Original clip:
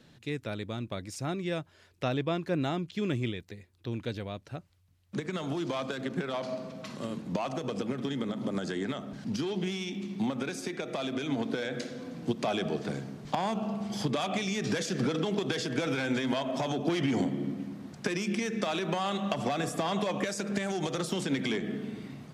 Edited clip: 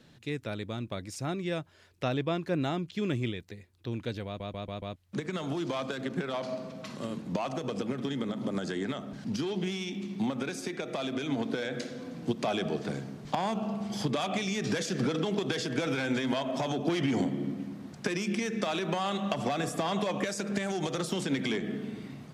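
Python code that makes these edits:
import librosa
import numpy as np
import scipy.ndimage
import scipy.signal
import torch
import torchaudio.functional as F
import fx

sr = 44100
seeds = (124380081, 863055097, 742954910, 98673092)

y = fx.edit(x, sr, fx.stutter_over(start_s=4.26, slice_s=0.14, count=5), tone=tone)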